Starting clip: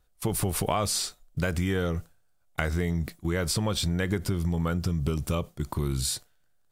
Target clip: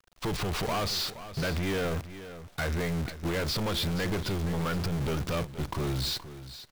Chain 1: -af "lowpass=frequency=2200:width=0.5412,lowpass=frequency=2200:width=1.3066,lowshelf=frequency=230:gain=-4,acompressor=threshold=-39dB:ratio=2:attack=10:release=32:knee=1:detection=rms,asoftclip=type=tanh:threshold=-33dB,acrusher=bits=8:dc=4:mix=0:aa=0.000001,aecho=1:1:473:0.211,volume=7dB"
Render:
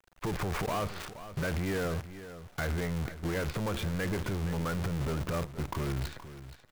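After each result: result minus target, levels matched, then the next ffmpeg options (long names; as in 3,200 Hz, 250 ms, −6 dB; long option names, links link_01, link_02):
downward compressor: peak gain reduction +9 dB; 4,000 Hz band −8.0 dB
-af "lowpass=frequency=2200:width=0.5412,lowpass=frequency=2200:width=1.3066,lowshelf=frequency=230:gain=-4,asoftclip=type=tanh:threshold=-33dB,acrusher=bits=8:dc=4:mix=0:aa=0.000001,aecho=1:1:473:0.211,volume=7dB"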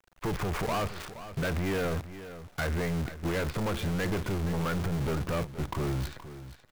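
4,000 Hz band −8.0 dB
-af "lowpass=frequency=4700:width=0.5412,lowpass=frequency=4700:width=1.3066,lowshelf=frequency=230:gain=-4,asoftclip=type=tanh:threshold=-33dB,acrusher=bits=8:dc=4:mix=0:aa=0.000001,aecho=1:1:473:0.211,volume=7dB"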